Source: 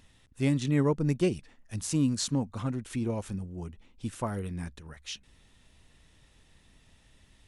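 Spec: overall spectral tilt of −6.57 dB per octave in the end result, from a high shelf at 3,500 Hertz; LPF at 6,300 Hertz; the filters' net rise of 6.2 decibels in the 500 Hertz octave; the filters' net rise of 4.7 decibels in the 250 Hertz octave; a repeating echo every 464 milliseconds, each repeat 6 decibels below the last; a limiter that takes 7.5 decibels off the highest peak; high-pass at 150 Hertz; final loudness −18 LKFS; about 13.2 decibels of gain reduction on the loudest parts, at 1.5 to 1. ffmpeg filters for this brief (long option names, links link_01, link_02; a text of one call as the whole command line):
ffmpeg -i in.wav -af "highpass=150,lowpass=6300,equalizer=frequency=250:width_type=o:gain=4.5,equalizer=frequency=500:width_type=o:gain=6.5,highshelf=frequency=3500:gain=-6,acompressor=threshold=-55dB:ratio=1.5,alimiter=level_in=7dB:limit=-24dB:level=0:latency=1,volume=-7dB,aecho=1:1:464|928|1392|1856|2320|2784:0.501|0.251|0.125|0.0626|0.0313|0.0157,volume=24dB" out.wav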